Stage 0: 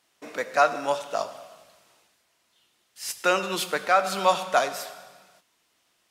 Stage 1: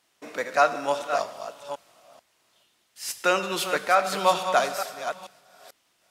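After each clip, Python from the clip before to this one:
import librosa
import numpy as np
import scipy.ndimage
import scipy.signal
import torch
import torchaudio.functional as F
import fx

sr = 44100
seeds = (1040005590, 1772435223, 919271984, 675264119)

y = fx.reverse_delay(x, sr, ms=439, wet_db=-9)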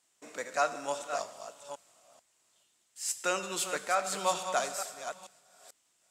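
y = fx.peak_eq(x, sr, hz=7600.0, db=14.0, octaves=0.59)
y = y * librosa.db_to_amplitude(-9.0)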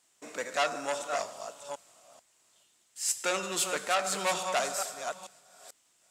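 y = fx.transformer_sat(x, sr, knee_hz=3100.0)
y = y * librosa.db_to_amplitude(4.0)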